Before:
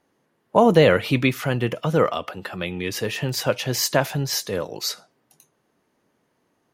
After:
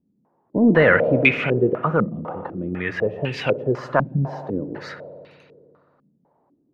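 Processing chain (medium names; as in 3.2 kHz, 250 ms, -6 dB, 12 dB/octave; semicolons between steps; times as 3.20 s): spring tank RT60 2.7 s, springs 56 ms, chirp 40 ms, DRR 10.5 dB; saturation -4.5 dBFS, distortion -21 dB; step-sequenced low-pass 4 Hz 210–2500 Hz; trim -1 dB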